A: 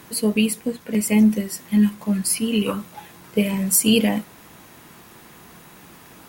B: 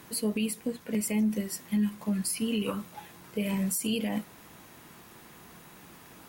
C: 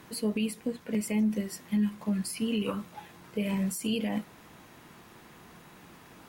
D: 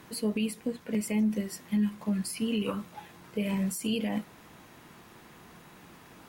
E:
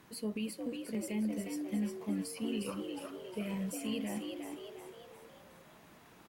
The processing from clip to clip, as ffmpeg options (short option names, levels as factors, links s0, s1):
-af "alimiter=limit=0.178:level=0:latency=1:release=99,volume=0.531"
-af "highshelf=f=7200:g=-9"
-af anull
-filter_complex "[0:a]asplit=7[s0][s1][s2][s3][s4][s5][s6];[s1]adelay=358,afreqshift=81,volume=0.531[s7];[s2]adelay=716,afreqshift=162,volume=0.26[s8];[s3]adelay=1074,afreqshift=243,volume=0.127[s9];[s4]adelay=1432,afreqshift=324,volume=0.0624[s10];[s5]adelay=1790,afreqshift=405,volume=0.0305[s11];[s6]adelay=2148,afreqshift=486,volume=0.015[s12];[s0][s7][s8][s9][s10][s11][s12]amix=inputs=7:normalize=0,volume=0.398"